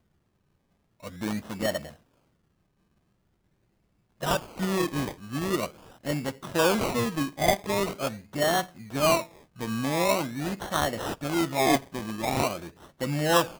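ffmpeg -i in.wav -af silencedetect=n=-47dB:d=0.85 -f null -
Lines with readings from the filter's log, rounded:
silence_start: 0.00
silence_end: 1.03 | silence_duration: 1.03
silence_start: 1.95
silence_end: 4.21 | silence_duration: 2.26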